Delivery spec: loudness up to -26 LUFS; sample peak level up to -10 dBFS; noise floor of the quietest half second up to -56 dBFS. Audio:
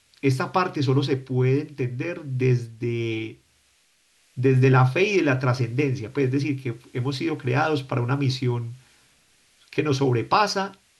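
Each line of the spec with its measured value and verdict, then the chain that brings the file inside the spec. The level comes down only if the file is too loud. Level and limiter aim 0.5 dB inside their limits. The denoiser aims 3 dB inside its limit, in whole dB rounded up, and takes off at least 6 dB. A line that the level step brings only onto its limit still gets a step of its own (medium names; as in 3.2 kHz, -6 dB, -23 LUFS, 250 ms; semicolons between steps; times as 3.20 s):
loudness -23.5 LUFS: fail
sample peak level -7.0 dBFS: fail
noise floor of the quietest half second -63 dBFS: pass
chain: trim -3 dB; peak limiter -10.5 dBFS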